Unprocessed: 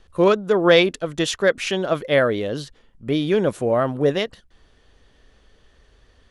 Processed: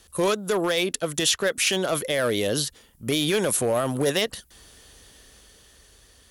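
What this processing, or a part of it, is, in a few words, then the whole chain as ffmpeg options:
FM broadcast chain: -filter_complex "[0:a]highpass=43,dynaudnorm=framelen=210:gausssize=13:maxgain=6dB,acrossover=split=630|4700[link_01][link_02][link_03];[link_01]acompressor=threshold=-22dB:ratio=4[link_04];[link_02]acompressor=threshold=-22dB:ratio=4[link_05];[link_03]acompressor=threshold=-45dB:ratio=4[link_06];[link_04][link_05][link_06]amix=inputs=3:normalize=0,aemphasis=mode=production:type=50fm,alimiter=limit=-14dB:level=0:latency=1:release=15,asoftclip=type=hard:threshold=-16.5dB,lowpass=frequency=15000:width=0.5412,lowpass=frequency=15000:width=1.3066,aemphasis=mode=production:type=50fm"

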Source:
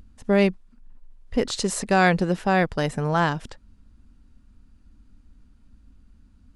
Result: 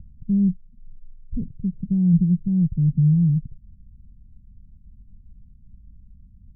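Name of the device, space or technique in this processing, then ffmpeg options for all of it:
the neighbour's flat through the wall: -af "lowpass=frequency=170:width=0.5412,lowpass=frequency=170:width=1.3066,equalizer=frequency=150:width_type=o:width=0.96:gain=7,volume=5.5dB"

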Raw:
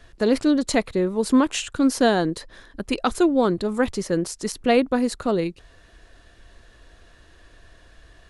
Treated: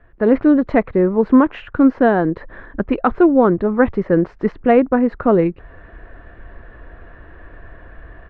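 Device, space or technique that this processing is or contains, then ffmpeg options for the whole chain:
action camera in a waterproof case: -af "lowpass=frequency=1900:width=0.5412,lowpass=frequency=1900:width=1.3066,dynaudnorm=framelen=140:gausssize=3:maxgain=13dB,volume=-1dB" -ar 48000 -c:a aac -b:a 96k

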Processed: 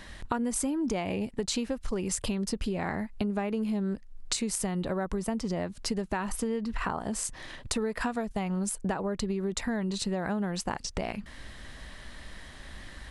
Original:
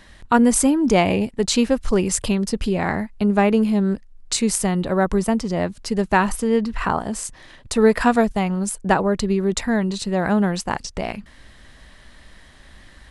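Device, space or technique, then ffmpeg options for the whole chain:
serial compression, leveller first: -af "acompressor=threshold=-19dB:ratio=2.5,acompressor=threshold=-31dB:ratio=4,volume=1.5dB"

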